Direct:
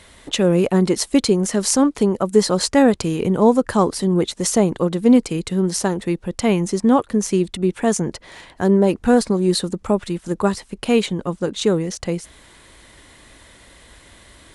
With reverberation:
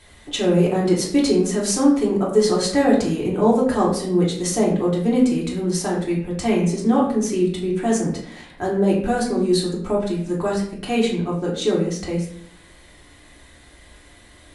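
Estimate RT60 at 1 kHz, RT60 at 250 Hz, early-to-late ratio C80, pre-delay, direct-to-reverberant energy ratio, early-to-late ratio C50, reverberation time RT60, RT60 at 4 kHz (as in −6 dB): 0.55 s, 0.95 s, 8.0 dB, 3 ms, −5.5 dB, 5.0 dB, 0.65 s, 0.45 s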